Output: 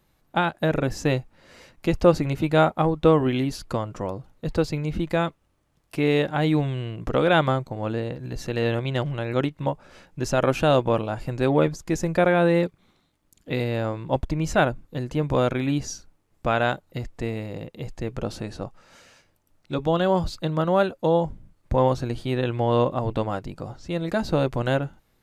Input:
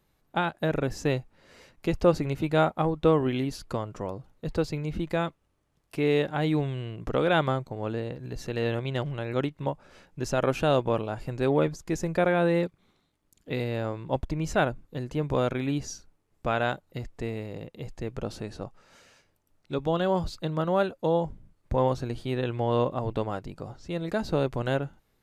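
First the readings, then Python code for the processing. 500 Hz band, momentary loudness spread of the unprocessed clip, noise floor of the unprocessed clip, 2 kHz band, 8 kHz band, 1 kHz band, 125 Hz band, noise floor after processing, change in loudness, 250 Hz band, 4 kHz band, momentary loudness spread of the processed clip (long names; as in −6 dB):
+4.0 dB, 13 LU, −71 dBFS, +4.5 dB, +4.5 dB, +4.5 dB, +4.5 dB, −67 dBFS, +4.0 dB, +4.5 dB, +4.5 dB, 13 LU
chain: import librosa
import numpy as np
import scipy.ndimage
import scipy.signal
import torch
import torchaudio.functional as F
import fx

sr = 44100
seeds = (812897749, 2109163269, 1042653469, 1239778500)

y = fx.notch(x, sr, hz=420.0, q=12.0)
y = F.gain(torch.from_numpy(y), 4.5).numpy()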